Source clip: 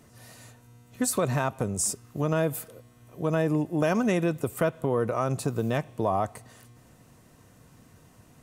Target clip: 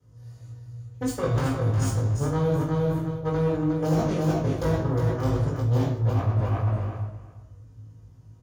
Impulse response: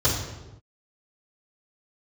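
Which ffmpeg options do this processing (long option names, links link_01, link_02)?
-filter_complex "[0:a]flanger=delay=5.5:depth=4.8:regen=59:speed=1:shape=sinusoidal,aeval=exprs='0.168*(cos(1*acos(clip(val(0)/0.168,-1,1)))-cos(1*PI/2))+0.0531*(cos(3*acos(clip(val(0)/0.168,-1,1)))-cos(3*PI/2))':channel_layout=same,acrossover=split=640|910[link_01][link_02][link_03];[link_03]aeval=exprs='(mod(26.6*val(0)+1,2)-1)/26.6':channel_layout=same[link_04];[link_01][link_02][link_04]amix=inputs=3:normalize=0,lowshelf=frequency=130:gain=10.5,asplit=2[link_05][link_06];[link_06]adelay=19,volume=-2.5dB[link_07];[link_05][link_07]amix=inputs=2:normalize=0,aecho=1:1:359|718|1077:0.531|0.0903|0.0153[link_08];[1:a]atrim=start_sample=2205,asetrate=42777,aresample=44100[link_09];[link_08][link_09]afir=irnorm=-1:irlink=0,areverse,acompressor=threshold=-23dB:ratio=6,areverse,volume=1.5dB"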